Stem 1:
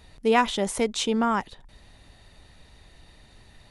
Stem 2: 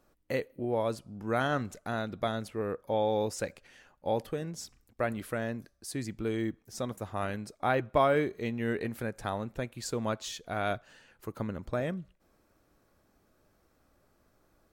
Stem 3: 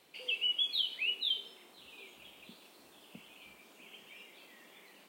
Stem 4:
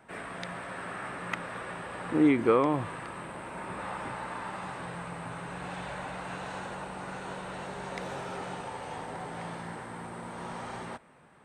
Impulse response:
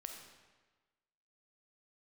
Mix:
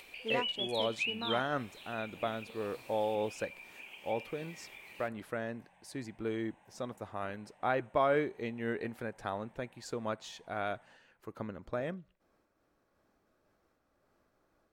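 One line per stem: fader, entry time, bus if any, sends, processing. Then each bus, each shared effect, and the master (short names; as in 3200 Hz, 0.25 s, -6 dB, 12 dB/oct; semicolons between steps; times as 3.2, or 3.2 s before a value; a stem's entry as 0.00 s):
-15.5 dB, 0.00 s, no send, Wiener smoothing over 25 samples
0.0 dB, 0.00 s, no send, high shelf 5600 Hz -11.5 dB; noise-modulated level, depth 55%
-7.0 dB, 0.00 s, no send, bell 2400 Hz +14 dB 0.25 oct; upward compressor, threshold -36 dBFS
-19.5 dB, 0.00 s, no send, fixed phaser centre 1300 Hz, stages 6; level quantiser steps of 9 dB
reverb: off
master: low shelf 190 Hz -8.5 dB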